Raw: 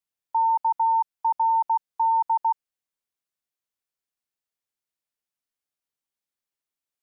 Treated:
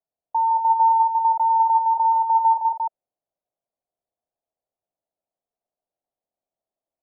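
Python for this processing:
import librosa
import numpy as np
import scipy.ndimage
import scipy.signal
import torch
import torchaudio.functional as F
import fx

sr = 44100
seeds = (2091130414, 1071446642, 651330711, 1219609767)

y = fx.lowpass_res(x, sr, hz=670.0, q=4.9)
y = fx.echo_multitap(y, sr, ms=(164, 182, 197, 251, 352), db=(-5.0, -19.5, -19.0, -12.0, -3.5))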